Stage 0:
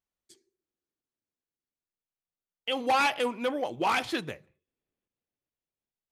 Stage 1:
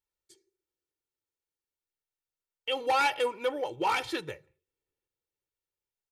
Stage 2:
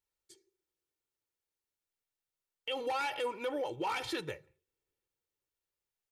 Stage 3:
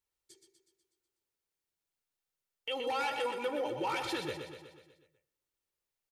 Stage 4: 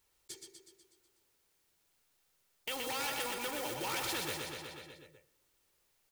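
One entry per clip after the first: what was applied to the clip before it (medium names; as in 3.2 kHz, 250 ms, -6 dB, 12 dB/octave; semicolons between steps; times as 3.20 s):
comb 2.2 ms, depth 72%; trim -3.5 dB
peak limiter -27.5 dBFS, peak gain reduction 10.5 dB
feedback delay 123 ms, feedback 57%, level -7 dB; on a send at -21 dB: reverberation RT60 0.40 s, pre-delay 97 ms
block-companded coder 5-bit; spectrum-flattening compressor 2:1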